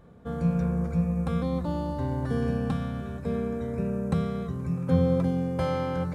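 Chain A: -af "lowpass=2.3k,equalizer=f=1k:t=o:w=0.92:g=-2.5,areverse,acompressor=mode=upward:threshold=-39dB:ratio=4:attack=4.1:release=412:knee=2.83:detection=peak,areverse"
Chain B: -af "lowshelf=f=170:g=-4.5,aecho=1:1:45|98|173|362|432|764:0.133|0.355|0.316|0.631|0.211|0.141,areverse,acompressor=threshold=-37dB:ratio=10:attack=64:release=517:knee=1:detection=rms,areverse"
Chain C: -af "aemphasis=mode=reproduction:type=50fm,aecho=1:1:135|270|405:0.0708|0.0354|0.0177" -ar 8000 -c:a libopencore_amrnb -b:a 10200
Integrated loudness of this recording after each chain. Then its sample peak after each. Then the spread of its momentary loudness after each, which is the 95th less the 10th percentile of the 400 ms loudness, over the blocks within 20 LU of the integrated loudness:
-28.5, -40.5, -28.5 LUFS; -12.0, -27.5, -10.5 dBFS; 7, 2, 7 LU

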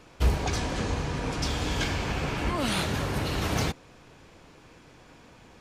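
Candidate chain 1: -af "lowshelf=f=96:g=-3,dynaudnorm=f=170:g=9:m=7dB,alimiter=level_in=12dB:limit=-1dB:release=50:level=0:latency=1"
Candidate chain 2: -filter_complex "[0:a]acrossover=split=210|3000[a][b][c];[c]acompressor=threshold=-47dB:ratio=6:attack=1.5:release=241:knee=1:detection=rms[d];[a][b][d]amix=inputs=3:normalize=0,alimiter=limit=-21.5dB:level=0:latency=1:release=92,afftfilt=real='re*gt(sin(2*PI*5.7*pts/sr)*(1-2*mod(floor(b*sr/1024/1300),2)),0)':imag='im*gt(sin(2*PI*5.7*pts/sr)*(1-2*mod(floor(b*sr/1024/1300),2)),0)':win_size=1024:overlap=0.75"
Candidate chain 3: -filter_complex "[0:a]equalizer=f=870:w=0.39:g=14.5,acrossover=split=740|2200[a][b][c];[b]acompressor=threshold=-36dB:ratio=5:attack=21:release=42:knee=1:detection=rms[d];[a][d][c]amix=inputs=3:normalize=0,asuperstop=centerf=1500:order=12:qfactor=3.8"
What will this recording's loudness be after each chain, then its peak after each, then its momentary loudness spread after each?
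-12.0, -35.0, -23.5 LUFS; -1.0, -21.0, -9.0 dBFS; 6, 2, 3 LU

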